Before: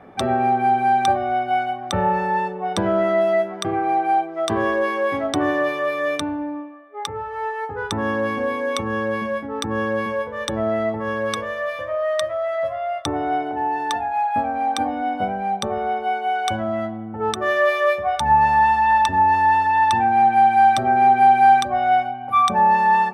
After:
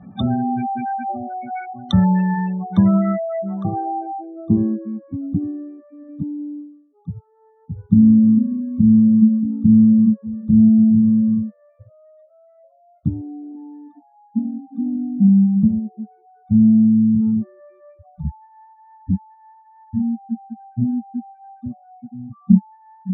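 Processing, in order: spectral gate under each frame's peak -15 dB strong; low-pass sweep 3600 Hz -> 210 Hz, 2.21–5.06; resonant low shelf 290 Hz +12.5 dB, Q 3; gain -5.5 dB

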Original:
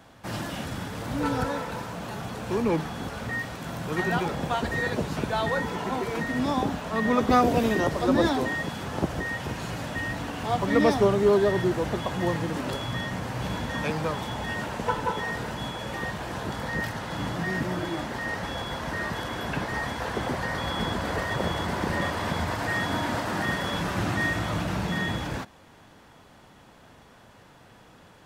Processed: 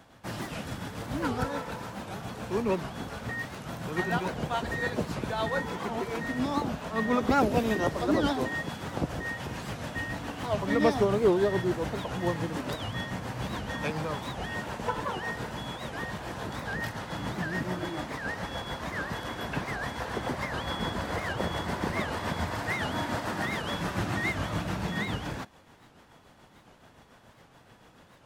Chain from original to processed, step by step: tremolo 7 Hz, depth 44%; record warp 78 rpm, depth 250 cents; gain -1.5 dB

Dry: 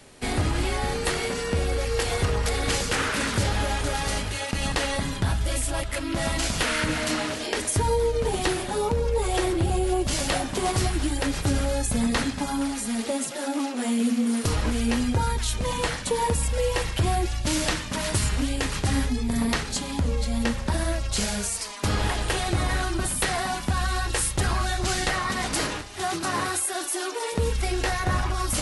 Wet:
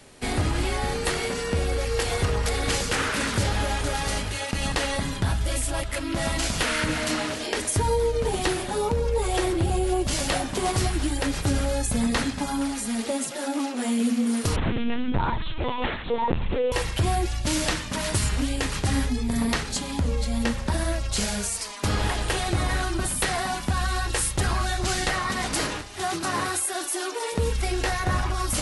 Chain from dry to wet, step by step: 14.56–16.72 LPC vocoder at 8 kHz pitch kept

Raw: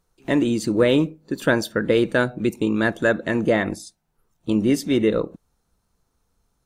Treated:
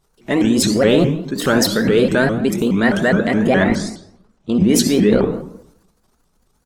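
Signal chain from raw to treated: comb 4.7 ms, depth 40%; transient shaper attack -2 dB, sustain +10 dB; in parallel at -1.5 dB: level quantiser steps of 12 dB; 3.67–4.69 on the sum: air absorption 67 m; on a send at -7 dB: reverb RT60 0.70 s, pre-delay 52 ms; on the sum: shaped vibrato saw up 4.8 Hz, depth 250 cents

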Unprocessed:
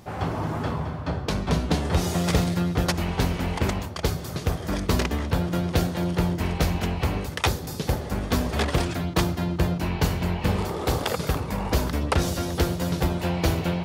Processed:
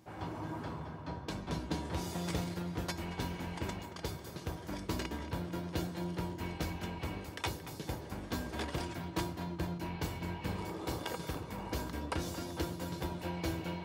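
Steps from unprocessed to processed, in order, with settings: HPF 57 Hz; resonator 320 Hz, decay 0.2 s, harmonics odd, mix 80%; tape echo 0.225 s, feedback 83%, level -11.5 dB, low-pass 2900 Hz; gain -1.5 dB

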